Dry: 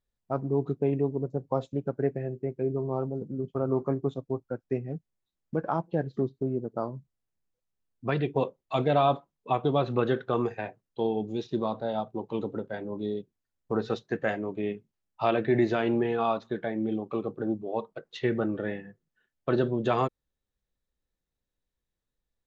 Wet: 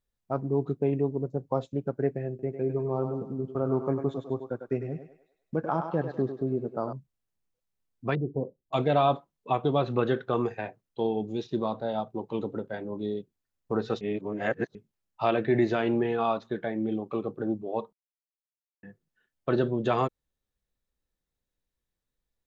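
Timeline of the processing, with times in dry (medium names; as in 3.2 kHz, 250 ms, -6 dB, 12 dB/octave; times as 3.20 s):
2.29–6.93 s: thinning echo 100 ms, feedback 51%, high-pass 440 Hz, level -6 dB
8.15–8.73 s: Gaussian low-pass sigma 16 samples
14.01–14.75 s: reverse
17.93–18.83 s: mute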